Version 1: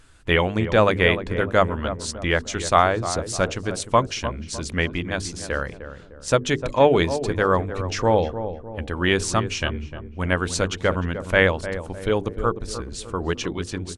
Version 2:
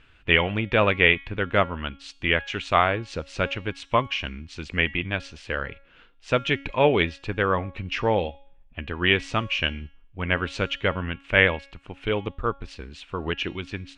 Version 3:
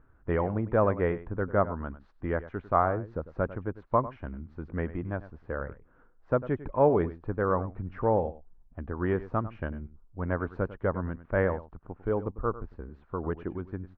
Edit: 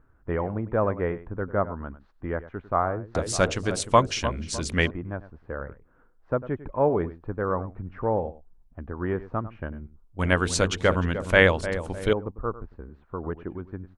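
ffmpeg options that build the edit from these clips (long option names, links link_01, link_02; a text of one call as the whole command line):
ffmpeg -i take0.wav -i take1.wav -i take2.wav -filter_complex "[0:a]asplit=2[link_01][link_02];[2:a]asplit=3[link_03][link_04][link_05];[link_03]atrim=end=3.152[link_06];[link_01]atrim=start=3.148:end=4.912[link_07];[link_04]atrim=start=4.908:end=10.192[link_08];[link_02]atrim=start=10.188:end=12.132[link_09];[link_05]atrim=start=12.128[link_10];[link_06][link_07]acrossfade=duration=0.004:curve1=hsin:curve2=hsin[link_11];[link_11][link_08]acrossfade=duration=0.004:curve1=hsin:curve2=hsin[link_12];[link_12][link_09]acrossfade=duration=0.004:curve1=hsin:curve2=hsin[link_13];[link_13][link_10]acrossfade=duration=0.004:curve1=hsin:curve2=hsin" out.wav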